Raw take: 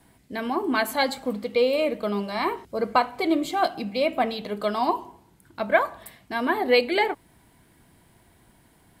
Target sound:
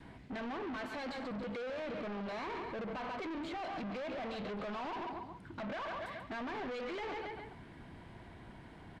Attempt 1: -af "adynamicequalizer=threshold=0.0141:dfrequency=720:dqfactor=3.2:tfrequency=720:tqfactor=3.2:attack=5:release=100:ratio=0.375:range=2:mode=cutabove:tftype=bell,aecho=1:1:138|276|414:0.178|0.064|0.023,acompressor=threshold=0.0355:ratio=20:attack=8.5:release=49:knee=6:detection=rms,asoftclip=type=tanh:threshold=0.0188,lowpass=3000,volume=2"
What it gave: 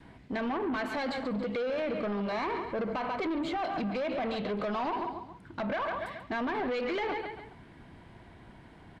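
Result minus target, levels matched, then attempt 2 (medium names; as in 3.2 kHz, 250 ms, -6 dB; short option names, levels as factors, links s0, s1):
saturation: distortion -6 dB
-af "adynamicequalizer=threshold=0.0141:dfrequency=720:dqfactor=3.2:tfrequency=720:tqfactor=3.2:attack=5:release=100:ratio=0.375:range=2:mode=cutabove:tftype=bell,aecho=1:1:138|276|414:0.178|0.064|0.023,acompressor=threshold=0.0355:ratio=20:attack=8.5:release=49:knee=6:detection=rms,asoftclip=type=tanh:threshold=0.00562,lowpass=3000,volume=2"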